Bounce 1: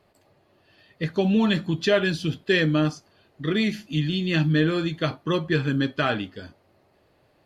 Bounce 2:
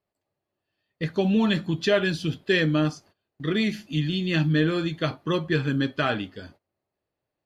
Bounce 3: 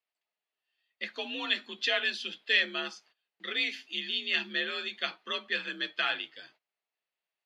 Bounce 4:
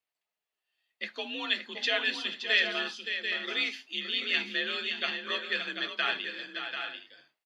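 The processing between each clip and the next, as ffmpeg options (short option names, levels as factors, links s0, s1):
-af "agate=range=0.0891:threshold=0.00355:ratio=16:detection=peak,volume=0.891"
-af "bandpass=f=2800:t=q:w=1.3:csg=0,afreqshift=53,volume=1.33"
-af "aecho=1:1:570|740|783|816:0.376|0.422|0.106|0.158"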